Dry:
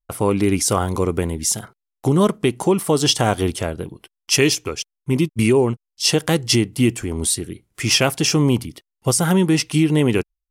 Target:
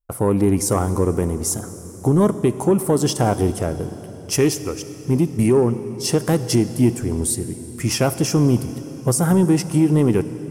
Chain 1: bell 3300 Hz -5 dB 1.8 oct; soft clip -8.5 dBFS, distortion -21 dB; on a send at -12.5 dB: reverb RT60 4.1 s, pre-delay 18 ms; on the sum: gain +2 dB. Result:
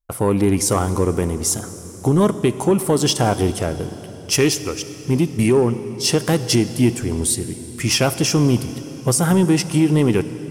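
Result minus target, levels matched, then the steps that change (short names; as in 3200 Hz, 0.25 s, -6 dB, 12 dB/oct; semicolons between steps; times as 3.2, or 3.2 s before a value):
4000 Hz band +5.5 dB
change: bell 3300 Hz -14.5 dB 1.8 oct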